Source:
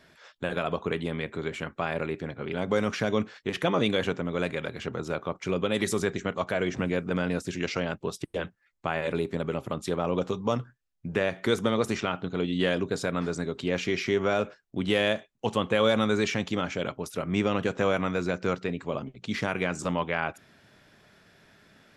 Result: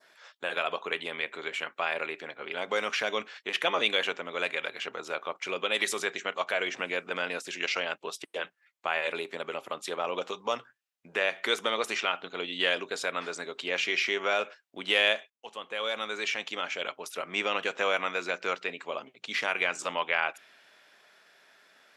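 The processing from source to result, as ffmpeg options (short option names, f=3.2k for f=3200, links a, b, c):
-filter_complex "[0:a]asplit=2[a][b];[a]atrim=end=15.3,asetpts=PTS-STARTPTS,afade=t=out:st=15.296:d=0.004:c=hsin:silence=0.16788[c];[b]atrim=start=15.3,asetpts=PTS-STARTPTS,afade=t=in:d=1.89:silence=0.16788[d];[c][d]concat=n=2:v=0:a=1,highpass=590,adynamicequalizer=threshold=0.00501:dfrequency=2700:dqfactor=1.3:tfrequency=2700:tqfactor=1.3:attack=5:release=100:ratio=0.375:range=3.5:mode=boostabove:tftype=bell"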